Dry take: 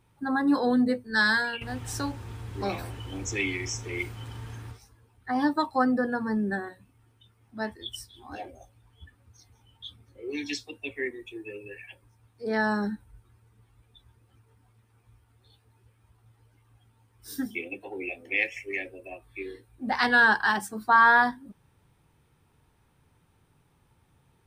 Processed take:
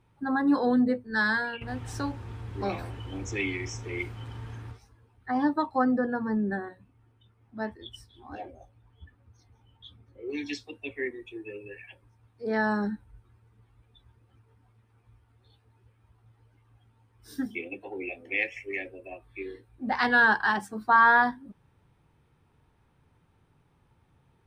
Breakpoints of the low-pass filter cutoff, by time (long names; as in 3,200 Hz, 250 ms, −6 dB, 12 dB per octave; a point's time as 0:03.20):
low-pass filter 6 dB per octave
2,900 Hz
from 0:00.79 1,700 Hz
from 0:01.68 2,800 Hz
from 0:05.38 1,600 Hz
from 0:10.30 2,900 Hz